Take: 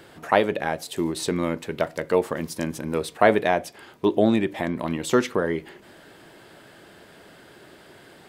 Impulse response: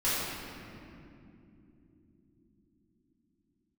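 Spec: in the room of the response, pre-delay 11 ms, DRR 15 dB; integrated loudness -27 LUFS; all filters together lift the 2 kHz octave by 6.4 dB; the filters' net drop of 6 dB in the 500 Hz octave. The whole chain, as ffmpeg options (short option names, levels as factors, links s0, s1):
-filter_complex "[0:a]equalizer=f=500:t=o:g=-8.5,equalizer=f=2000:t=o:g=8.5,asplit=2[s0][s1];[1:a]atrim=start_sample=2205,adelay=11[s2];[s1][s2]afir=irnorm=-1:irlink=0,volume=0.0501[s3];[s0][s3]amix=inputs=2:normalize=0,volume=0.794"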